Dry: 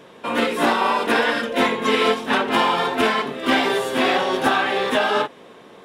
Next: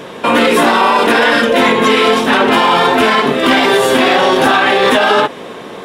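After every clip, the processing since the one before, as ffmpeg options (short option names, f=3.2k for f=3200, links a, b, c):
-af "alimiter=level_in=17dB:limit=-1dB:release=50:level=0:latency=1,volume=-1dB"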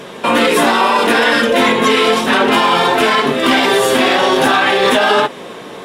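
-af "equalizer=f=9.8k:w=0.35:g=4,flanger=delay=4.9:depth=4.4:regen=-61:speed=0.39:shape=sinusoidal,volume=2dB"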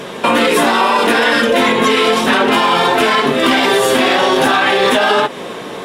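-af "acompressor=threshold=-14dB:ratio=3,volume=4dB"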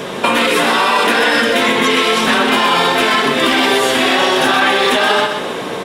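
-filter_complex "[0:a]acrossover=split=1400|6100[a][b][c];[a]acompressor=threshold=-18dB:ratio=4[d];[b]acompressor=threshold=-18dB:ratio=4[e];[c]acompressor=threshold=-33dB:ratio=4[f];[d][e][f]amix=inputs=3:normalize=0,aecho=1:1:127|254|381|508|635:0.447|0.197|0.0865|0.0381|0.0167,volume=3dB"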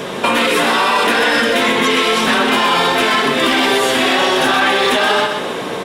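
-af "asoftclip=type=tanh:threshold=-4dB"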